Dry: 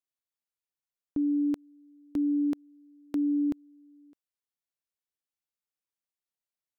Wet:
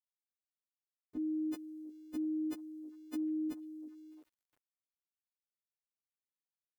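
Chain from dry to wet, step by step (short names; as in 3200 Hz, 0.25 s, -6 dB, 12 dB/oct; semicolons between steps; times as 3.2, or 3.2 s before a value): frequency quantiser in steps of 3 st; delay with a stepping band-pass 0.349 s, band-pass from 300 Hz, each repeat 0.7 oct, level -11 dB; sample gate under -59.5 dBFS; gain -8 dB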